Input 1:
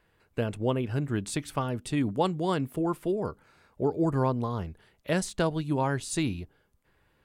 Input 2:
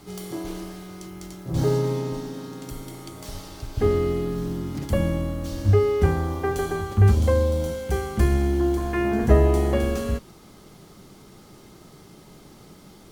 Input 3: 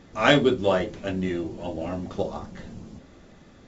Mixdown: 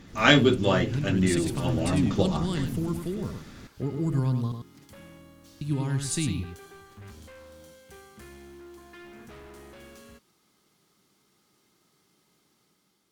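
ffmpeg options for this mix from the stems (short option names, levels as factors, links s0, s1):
-filter_complex "[0:a]acrossover=split=270|3000[s0][s1][s2];[s1]acompressor=threshold=0.00891:ratio=3[s3];[s0][s3][s2]amix=inputs=3:normalize=0,volume=1,asplit=3[s4][s5][s6];[s4]atrim=end=4.52,asetpts=PTS-STARTPTS,afade=t=out:st=4.516:d=0.004:c=hsin[s7];[s5]atrim=start=4.52:end=5.61,asetpts=PTS-STARTPTS,volume=0[s8];[s6]atrim=start=5.61,asetpts=PTS-STARTPTS,afade=t=in:d=0.004:c=hsin[s9];[s7][s8][s9]concat=n=3:v=0:a=1,asplit=2[s10][s11];[s11]volume=0.473[s12];[1:a]highpass=f=460:p=1,volume=23.7,asoftclip=hard,volume=0.0422,volume=0.133[s13];[2:a]volume=1.41[s14];[s12]aecho=0:1:101:1[s15];[s10][s13][s14][s15]amix=inputs=4:normalize=0,equalizer=f=620:w=0.93:g=-7.5,dynaudnorm=f=300:g=5:m=1.58"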